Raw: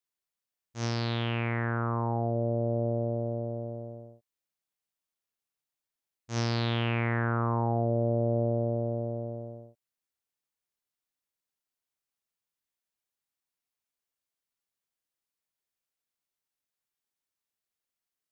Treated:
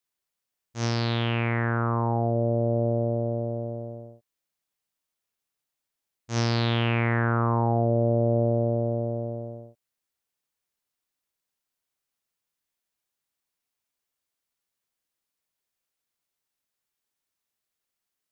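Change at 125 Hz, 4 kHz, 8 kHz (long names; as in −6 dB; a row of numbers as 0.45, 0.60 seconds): +4.5 dB, +4.5 dB, can't be measured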